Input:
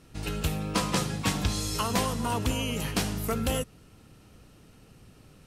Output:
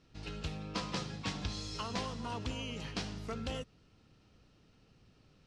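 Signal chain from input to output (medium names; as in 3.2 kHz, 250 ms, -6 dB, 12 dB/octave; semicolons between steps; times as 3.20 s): four-pole ladder low-pass 6.3 kHz, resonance 30%; trim -4 dB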